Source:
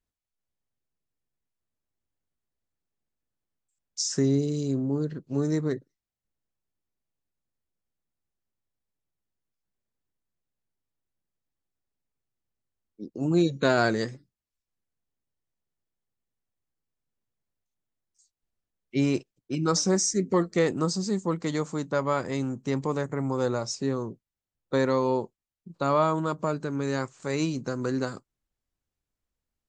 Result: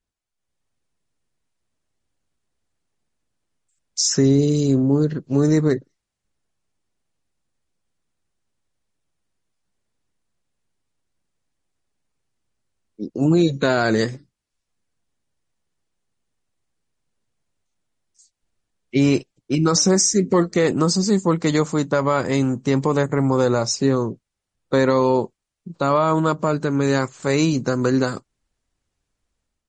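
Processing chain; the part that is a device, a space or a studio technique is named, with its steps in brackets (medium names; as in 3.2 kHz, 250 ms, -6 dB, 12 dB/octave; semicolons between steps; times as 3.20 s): low-bitrate web radio (level rider gain up to 7 dB; peak limiter -10.5 dBFS, peak gain reduction 6.5 dB; trim +3.5 dB; MP3 40 kbps 48 kHz)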